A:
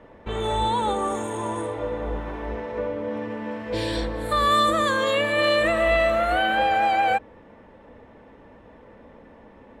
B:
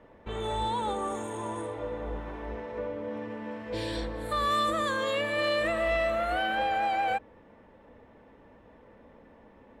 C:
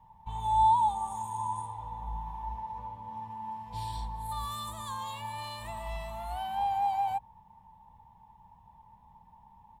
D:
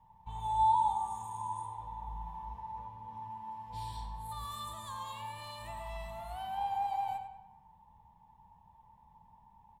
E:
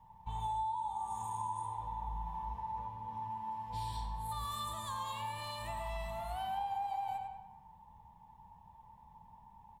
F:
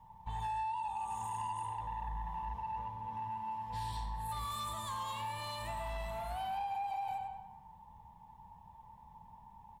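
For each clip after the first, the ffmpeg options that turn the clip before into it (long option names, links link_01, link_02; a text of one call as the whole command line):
ffmpeg -i in.wav -af "asoftclip=type=tanh:threshold=-11dB,volume=-6.5dB" out.wav
ffmpeg -i in.wav -af "firequalizer=gain_entry='entry(170,0);entry(270,-25);entry(570,-27);entry(890,11);entry(1300,-22);entry(3300,-9);entry(12000,5)':delay=0.05:min_phase=1" out.wav
ffmpeg -i in.wav -filter_complex "[0:a]asplit=2[link_01][link_02];[link_02]adelay=98,lowpass=frequency=3800:poles=1,volume=-7dB,asplit=2[link_03][link_04];[link_04]adelay=98,lowpass=frequency=3800:poles=1,volume=0.49,asplit=2[link_05][link_06];[link_06]adelay=98,lowpass=frequency=3800:poles=1,volume=0.49,asplit=2[link_07][link_08];[link_08]adelay=98,lowpass=frequency=3800:poles=1,volume=0.49,asplit=2[link_09][link_10];[link_10]adelay=98,lowpass=frequency=3800:poles=1,volume=0.49,asplit=2[link_11][link_12];[link_12]adelay=98,lowpass=frequency=3800:poles=1,volume=0.49[link_13];[link_01][link_03][link_05][link_07][link_09][link_11][link_13]amix=inputs=7:normalize=0,volume=-5dB" out.wav
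ffmpeg -i in.wav -af "acompressor=threshold=-37dB:ratio=16,volume=3dB" out.wav
ffmpeg -i in.wav -af "asoftclip=type=tanh:threshold=-34.5dB,volume=2dB" out.wav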